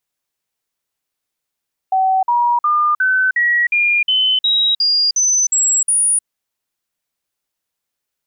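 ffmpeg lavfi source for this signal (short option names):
-f lavfi -i "aevalsrc='0.266*clip(min(mod(t,0.36),0.31-mod(t,0.36))/0.005,0,1)*sin(2*PI*760*pow(2,floor(t/0.36)/3)*mod(t,0.36))':d=4.32:s=44100"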